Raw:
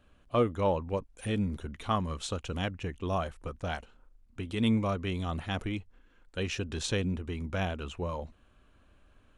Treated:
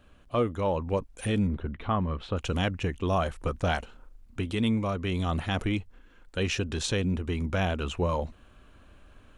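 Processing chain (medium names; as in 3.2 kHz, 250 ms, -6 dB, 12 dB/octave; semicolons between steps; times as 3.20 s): in parallel at -1 dB: peak limiter -26.5 dBFS, peak gain reduction 10.5 dB; on the sum: gain riding 0.5 s; 1.47–2.37 s: distance through air 410 m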